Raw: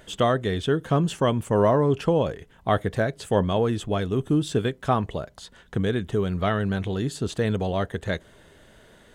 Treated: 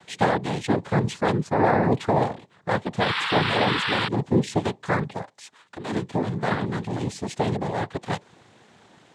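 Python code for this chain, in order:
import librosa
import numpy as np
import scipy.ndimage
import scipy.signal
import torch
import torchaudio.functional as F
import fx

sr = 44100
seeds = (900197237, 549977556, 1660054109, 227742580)

y = fx.spec_paint(x, sr, seeds[0], shape='noise', start_s=3.0, length_s=1.08, low_hz=1000.0, high_hz=2700.0, level_db=-26.0)
y = fx.highpass(y, sr, hz=700.0, slope=6, at=(5.21, 5.91))
y = fx.noise_vocoder(y, sr, seeds[1], bands=6)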